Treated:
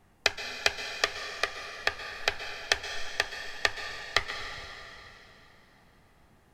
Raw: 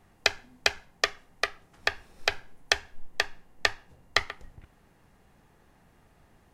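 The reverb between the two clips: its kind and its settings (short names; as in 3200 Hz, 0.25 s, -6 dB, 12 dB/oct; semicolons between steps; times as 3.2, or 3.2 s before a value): plate-style reverb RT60 3.3 s, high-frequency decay 0.9×, pre-delay 0.11 s, DRR 6 dB; gain -1.5 dB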